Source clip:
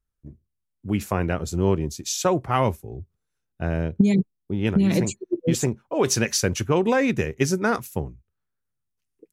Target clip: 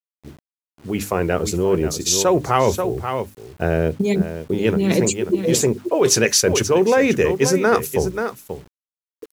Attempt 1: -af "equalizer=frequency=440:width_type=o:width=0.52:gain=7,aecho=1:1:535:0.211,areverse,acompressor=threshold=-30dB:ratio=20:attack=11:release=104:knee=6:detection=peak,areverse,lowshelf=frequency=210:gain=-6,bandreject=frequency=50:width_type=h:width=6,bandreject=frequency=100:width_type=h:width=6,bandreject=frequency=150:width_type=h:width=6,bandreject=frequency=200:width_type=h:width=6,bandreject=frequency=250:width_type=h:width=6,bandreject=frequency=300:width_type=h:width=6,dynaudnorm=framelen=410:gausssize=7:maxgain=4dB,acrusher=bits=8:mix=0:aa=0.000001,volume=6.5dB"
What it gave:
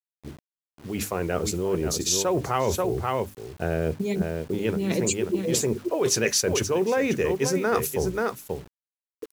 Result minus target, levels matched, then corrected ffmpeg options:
downward compressor: peak gain reduction +8 dB
-af "equalizer=frequency=440:width_type=o:width=0.52:gain=7,aecho=1:1:535:0.211,areverse,acompressor=threshold=-21.5dB:ratio=20:attack=11:release=104:knee=6:detection=peak,areverse,lowshelf=frequency=210:gain=-6,bandreject=frequency=50:width_type=h:width=6,bandreject=frequency=100:width_type=h:width=6,bandreject=frequency=150:width_type=h:width=6,bandreject=frequency=200:width_type=h:width=6,bandreject=frequency=250:width_type=h:width=6,bandreject=frequency=300:width_type=h:width=6,dynaudnorm=framelen=410:gausssize=7:maxgain=4dB,acrusher=bits=8:mix=0:aa=0.000001,volume=6.5dB"

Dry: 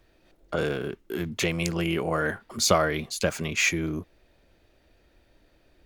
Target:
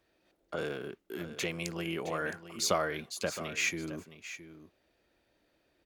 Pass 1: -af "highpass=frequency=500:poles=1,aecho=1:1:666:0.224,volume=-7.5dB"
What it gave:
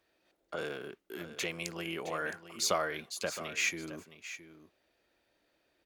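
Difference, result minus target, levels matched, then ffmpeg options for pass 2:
250 Hz band −3.0 dB
-af "highpass=frequency=210:poles=1,aecho=1:1:666:0.224,volume=-7.5dB"

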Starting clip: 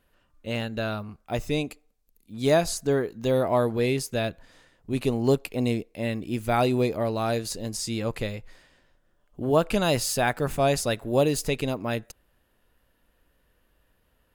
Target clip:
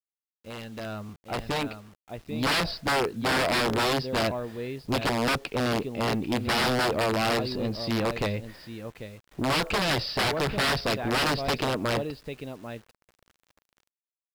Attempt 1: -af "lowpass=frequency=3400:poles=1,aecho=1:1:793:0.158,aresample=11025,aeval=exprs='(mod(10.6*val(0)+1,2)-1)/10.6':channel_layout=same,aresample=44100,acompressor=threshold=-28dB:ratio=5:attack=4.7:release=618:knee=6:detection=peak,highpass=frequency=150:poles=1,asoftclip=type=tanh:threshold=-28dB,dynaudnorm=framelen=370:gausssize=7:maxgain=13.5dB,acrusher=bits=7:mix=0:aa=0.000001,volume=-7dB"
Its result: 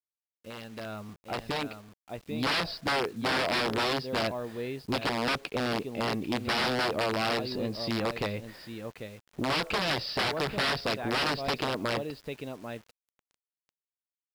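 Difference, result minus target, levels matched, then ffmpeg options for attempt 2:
downward compressor: peak gain reduction +6.5 dB; 125 Hz band −2.5 dB
-af "lowpass=frequency=3400:poles=1,aecho=1:1:793:0.158,aresample=11025,aeval=exprs='(mod(10.6*val(0)+1,2)-1)/10.6':channel_layout=same,aresample=44100,highpass=frequency=55:poles=1,asoftclip=type=tanh:threshold=-28dB,dynaudnorm=framelen=370:gausssize=7:maxgain=13.5dB,acrusher=bits=7:mix=0:aa=0.000001,volume=-7dB"

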